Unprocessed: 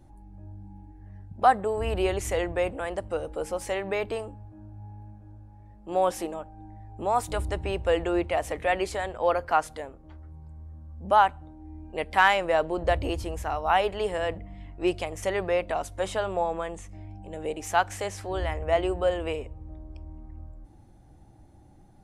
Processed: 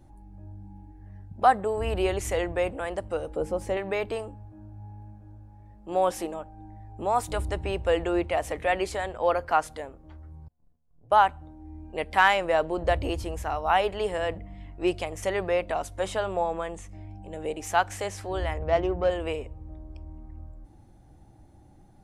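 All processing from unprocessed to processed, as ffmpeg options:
-filter_complex "[0:a]asettb=1/sr,asplit=3[a][b][c];[a]atrim=end=3.364[d];[b]atrim=start=3.36:end=3.77,asetpts=PTS-STARTPTS,afade=t=in:d=0.004:c=qsin,afade=t=out:st=0.406:d=0.004:c=qsin,highpass=50,tiltshelf=f=700:g=7.5[e];[c]atrim=start=3.766[f];[d][e]acrossfade=d=0.004:c1=hsin:c2=qsin[g];[g][f]acrossfade=d=0.004:c1=qsin:c2=hsin,asettb=1/sr,asplit=3[h][i][j];[h]atrim=end=10.484[k];[i]atrim=start=10.48:end=11.12,asetpts=PTS-STARTPTS,afade=t=in:d=0.004:c=qsin,afade=t=out:st=0.636:d=0.004:c=qsin,agate=range=-27dB:threshold=-40dB:ratio=16:release=100:detection=peak,afreqshift=-76,acompressor=threshold=-54dB:ratio=5:attack=3.2:release=140:knee=1:detection=peak[l];[j]atrim=start=11.116[m];[k][l]acrossfade=d=0.004:c1=hsin:c2=qsin[n];[n][m]acrossfade=d=0.004:c1=qsin:c2=hsin,asettb=1/sr,asplit=3[o][p][q];[o]atrim=end=18.584[r];[p]atrim=start=18.58:end=19.1,asetpts=PTS-STARTPTS,afade=t=in:d=0.004:c=qsin,afade=t=out:st=0.516:d=0.004:c=qsin,lowpass=5.7k,equalizer=f=150:t=o:w=0.98:g=5,adynamicsmooth=sensitivity=2:basefreq=1.5k[s];[q]atrim=start=19.096[t];[r][s]acrossfade=d=0.004:c1=hsin:c2=qsin[u];[u][t]acrossfade=d=0.004:c1=qsin:c2=hsin"

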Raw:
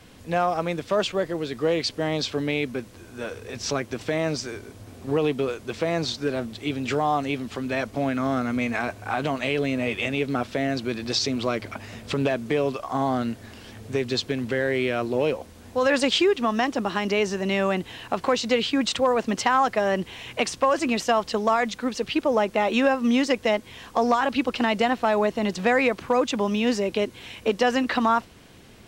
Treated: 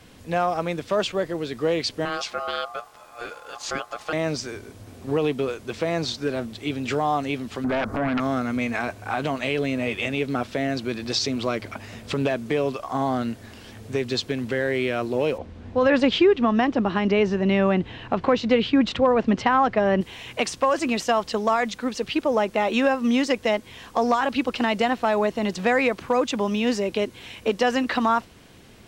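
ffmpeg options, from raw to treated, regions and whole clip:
-filter_complex "[0:a]asettb=1/sr,asplit=3[a][b][c];[a]atrim=end=2.054[d];[b]atrim=start=2.05:end=4.13,asetpts=PTS-STARTPTS,afade=t=in:d=0.004:c=qsin,afade=t=out:st=2.076:d=0.004:c=qsin,highpass=53,aeval=exprs='val(0)*sin(2*PI*950*n/s)':c=same[e];[c]atrim=start=4.126[f];[d][e]acrossfade=d=0.004:c1=hsin:c2=qsin[g];[g][f]acrossfade=d=0.004:c1=qsin:c2=hsin,asettb=1/sr,asplit=3[h][i][j];[h]atrim=end=7.644[k];[i]atrim=start=7.64:end=8.2,asetpts=PTS-STARTPTS,afade=t=in:d=0.004:c=qsin,afade=t=out:st=0.556:d=0.004:c=qsin,highshelf=f=1.9k:t=q:w=3:g=-12,acompressor=threshold=-33dB:ratio=2:attack=3.2:release=140:knee=1:detection=peak,aeval=exprs='0.1*sin(PI/2*2.51*val(0)/0.1)':c=same[l];[j]atrim=start=8.196[m];[k][l]acrossfade=d=0.004:c1=hsin:c2=qsin[n];[n][m]acrossfade=d=0.004:c1=qsin:c2=hsin,asettb=1/sr,asplit=3[o][p][q];[o]atrim=end=15.384[r];[p]atrim=start=15.38:end=20.01,asetpts=PTS-STARTPTS,afade=t=in:d=0.004:c=qsin,afade=t=out:st=4.626:d=0.004:c=qsin,lowpass=3.4k,lowshelf=f=320:g=8.5[s];[q]atrim=start=20.006[t];[r][s]acrossfade=d=0.004:c1=hsin:c2=qsin[u];[u][t]acrossfade=d=0.004:c1=qsin:c2=hsin"

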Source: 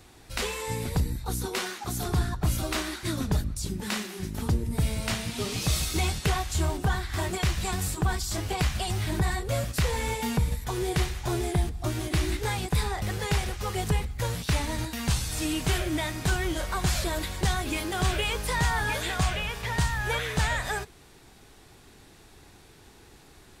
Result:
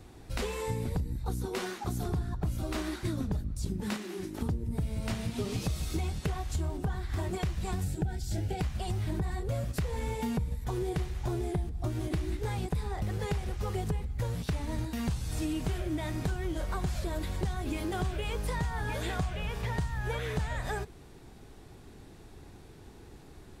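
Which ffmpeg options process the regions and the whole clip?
-filter_complex "[0:a]asettb=1/sr,asplit=3[a][b][c];[a]atrim=end=3.964[d];[b]atrim=start=3.96:end=4.41,asetpts=PTS-STARTPTS,afade=t=in:d=0.004:c=qsin,afade=t=out:st=0.446:d=0.004:c=qsin,equalizer=f=320:w=4.9:g=14.5,acrossover=split=330|6900[e][f][g];[e]acompressor=threshold=-44dB:ratio=4[h];[f]acompressor=threshold=-47dB:ratio=4[i];[g]acompressor=threshold=-54dB:ratio=4[j];[h][i][j]amix=inputs=3:normalize=0,asplit=2[k][l];[l]highpass=f=720:p=1,volume=14dB,asoftclip=type=tanh:threshold=-24dB[m];[k][m]amix=inputs=2:normalize=0,lowpass=f=6.4k:p=1,volume=-6dB[n];[c]atrim=start=4.406[o];[d][n]acrossfade=d=0.004:c1=hsin:c2=qsin[p];[p][o]acrossfade=d=0.004:c1=qsin:c2=hsin,asettb=1/sr,asplit=3[q][r][s];[q]atrim=end=7.834[t];[r]atrim=start=7.83:end=8.61,asetpts=PTS-STARTPTS,afade=t=in:d=0.004:c=qsin,afade=t=out:st=0.776:d=0.004:c=qsin,asuperstop=centerf=1100:order=20:qfactor=3,equalizer=f=130:t=o:w=1.4:g=5[u];[s]atrim=start=8.606[v];[t][u]acrossfade=d=0.004:c1=hsin:c2=qsin[w];[w][v]acrossfade=d=0.004:c1=qsin:c2=hsin,tiltshelf=f=830:g=5.5,acompressor=threshold=-28dB:ratio=6,volume=-1dB"

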